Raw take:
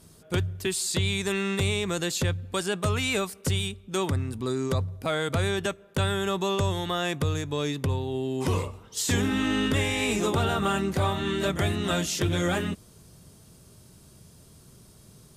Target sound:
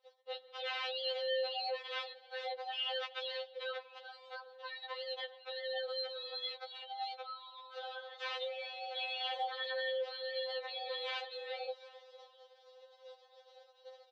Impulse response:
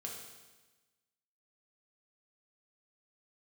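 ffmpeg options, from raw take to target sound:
-filter_complex "[0:a]agate=range=0.0562:threshold=0.00316:ratio=16:detection=peak,areverse,acompressor=threshold=0.0251:ratio=10,areverse,alimiter=level_in=3.76:limit=0.0631:level=0:latency=1:release=195,volume=0.266,aexciter=amount=5.6:drive=5.3:freq=2800,aeval=exprs='(mod(18.8*val(0)+1,2)-1)/18.8':c=same,asplit=4[s0][s1][s2][s3];[s1]adelay=420,afreqshift=-70,volume=0.112[s4];[s2]adelay=840,afreqshift=-140,volume=0.0372[s5];[s3]adelay=1260,afreqshift=-210,volume=0.0122[s6];[s0][s4][s5][s6]amix=inputs=4:normalize=0,asetrate=48000,aresample=44100,highpass=f=170:t=q:w=0.5412,highpass=f=170:t=q:w=1.307,lowpass=f=3300:t=q:w=0.5176,lowpass=f=3300:t=q:w=0.7071,lowpass=f=3300:t=q:w=1.932,afreqshift=310,afftfilt=real='re*3.46*eq(mod(b,12),0)':imag='im*3.46*eq(mod(b,12),0)':win_size=2048:overlap=0.75,volume=1.68"

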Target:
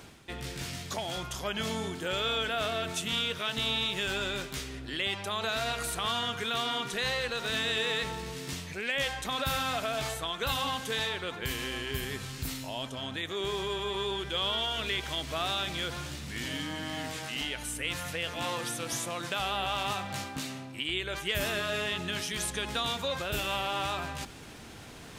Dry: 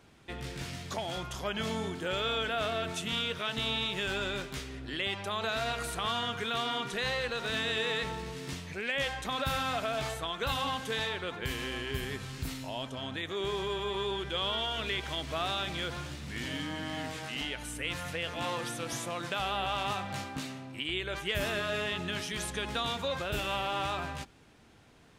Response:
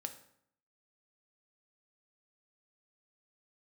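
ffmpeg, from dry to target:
-af "equalizer=f=14000:w=7.5:g=5.5,areverse,acompressor=mode=upward:threshold=0.0158:ratio=2.5,areverse,highshelf=f=4100:g=6.5"

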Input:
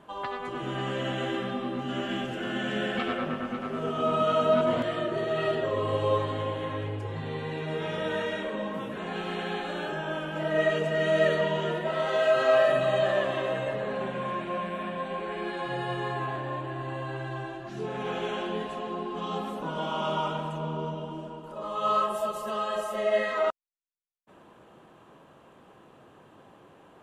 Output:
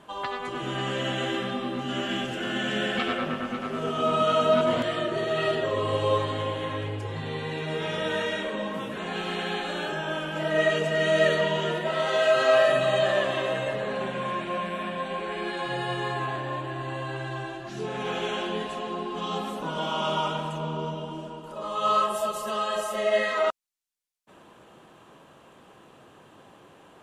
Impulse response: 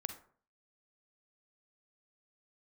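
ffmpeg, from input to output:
-af "equalizer=f=6900:t=o:w=2.9:g=7,volume=1.12"

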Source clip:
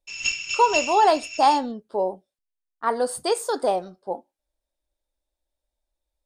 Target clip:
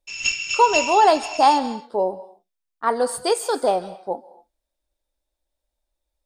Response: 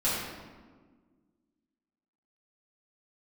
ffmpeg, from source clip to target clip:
-filter_complex "[0:a]asplit=2[s0][s1];[s1]highpass=f=1500:p=1[s2];[1:a]atrim=start_sample=2205,afade=t=out:st=0.2:d=0.01,atrim=end_sample=9261,adelay=133[s3];[s2][s3]afir=irnorm=-1:irlink=0,volume=0.0891[s4];[s0][s4]amix=inputs=2:normalize=0,volume=1.33"

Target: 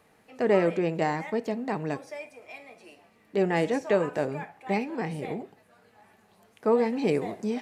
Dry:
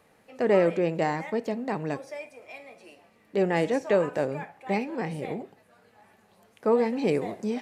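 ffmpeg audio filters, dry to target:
-af "bandreject=f=540:w=12"

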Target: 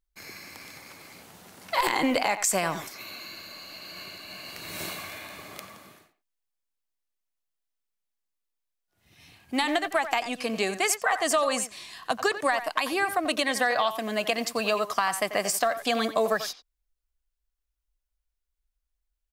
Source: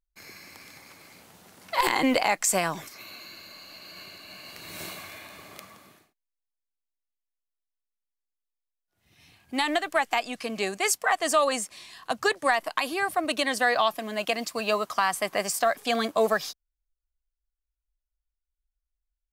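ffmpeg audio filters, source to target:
-filter_complex "[0:a]acompressor=threshold=0.0562:ratio=3,asplit=2[s0][s1];[s1]adelay=90,highpass=300,lowpass=3400,asoftclip=type=hard:threshold=0.106,volume=0.282[s2];[s0][s2]amix=inputs=2:normalize=0,volume=1.41"

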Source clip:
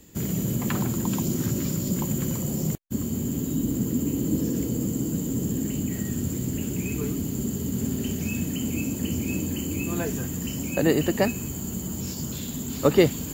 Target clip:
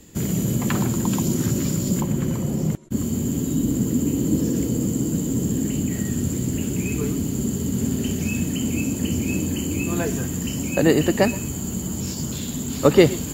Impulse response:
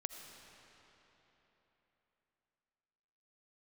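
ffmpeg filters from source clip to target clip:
-filter_complex "[1:a]atrim=start_sample=2205,atrim=end_sample=3087,asetrate=22491,aresample=44100[s0];[0:a][s0]afir=irnorm=-1:irlink=0,asplit=3[s1][s2][s3];[s1]afade=t=out:st=2:d=0.02[s4];[s2]adynamicequalizer=threshold=0.002:dfrequency=3200:dqfactor=0.7:tfrequency=3200:tqfactor=0.7:attack=5:release=100:ratio=0.375:range=4:mode=cutabove:tftype=highshelf,afade=t=in:st=2:d=0.02,afade=t=out:st=2.95:d=0.02[s5];[s3]afade=t=in:st=2.95:d=0.02[s6];[s4][s5][s6]amix=inputs=3:normalize=0,volume=1.5"

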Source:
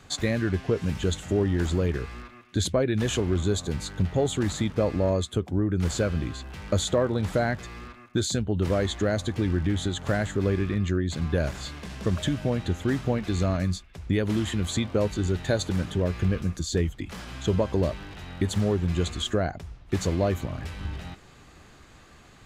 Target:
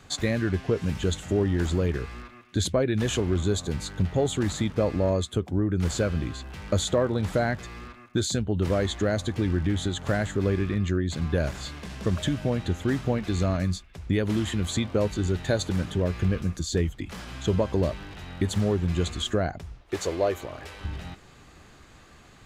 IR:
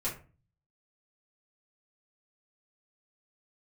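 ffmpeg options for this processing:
-filter_complex "[0:a]asettb=1/sr,asplit=3[s0][s1][s2];[s0]atrim=end=19.814[s3];[s1]atrim=start=19.81:end=20.84,asetpts=PTS-STARTPTS,afade=t=in:d=0.004:c=qsin,afade=t=out:st=1.026:d=0.004:c=qsin,lowshelf=f=290:t=q:w=1.5:g=-10.5[s4];[s2]atrim=start=20.836[s5];[s3][s4]acrossfade=d=0.004:c1=hsin:c2=qsin[s6];[s6][s5]acrossfade=d=0.004:c1=qsin:c2=hsin"

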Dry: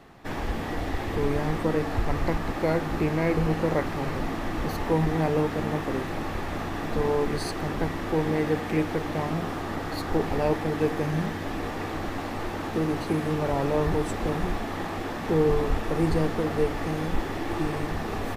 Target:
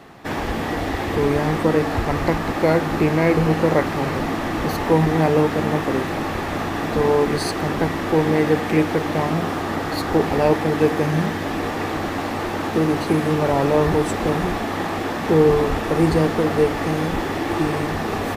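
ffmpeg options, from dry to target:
-af "highpass=f=100:p=1,volume=2.51"

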